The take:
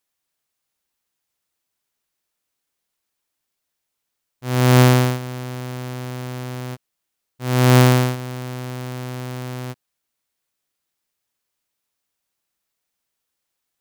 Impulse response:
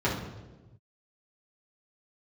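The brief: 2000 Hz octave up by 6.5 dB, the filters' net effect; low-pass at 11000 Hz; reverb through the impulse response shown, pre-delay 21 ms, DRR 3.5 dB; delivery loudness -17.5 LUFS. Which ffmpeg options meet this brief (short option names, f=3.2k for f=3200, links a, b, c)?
-filter_complex "[0:a]lowpass=11k,equalizer=f=2k:t=o:g=8,asplit=2[a][b];[1:a]atrim=start_sample=2205,adelay=21[c];[b][c]afir=irnorm=-1:irlink=0,volume=-16dB[d];[a][d]amix=inputs=2:normalize=0,volume=-6.5dB"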